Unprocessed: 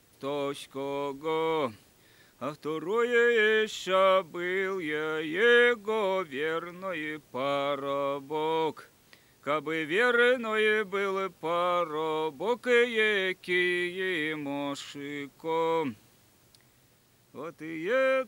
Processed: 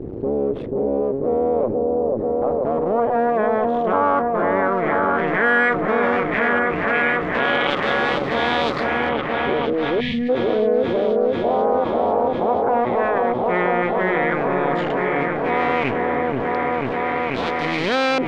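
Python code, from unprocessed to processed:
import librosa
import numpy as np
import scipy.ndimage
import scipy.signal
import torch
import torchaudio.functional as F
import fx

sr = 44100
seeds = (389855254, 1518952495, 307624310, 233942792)

y = fx.cycle_switch(x, sr, every=2, mode='muted')
y = fx.filter_lfo_lowpass(y, sr, shape='saw_up', hz=0.11, low_hz=360.0, high_hz=4500.0, q=2.6)
y = fx.echo_opening(y, sr, ms=488, hz=750, octaves=1, feedback_pct=70, wet_db=-3)
y = fx.spec_box(y, sr, start_s=10.0, length_s=0.29, low_hz=250.0, high_hz=1700.0, gain_db=-28)
y = fx.env_flatten(y, sr, amount_pct=70)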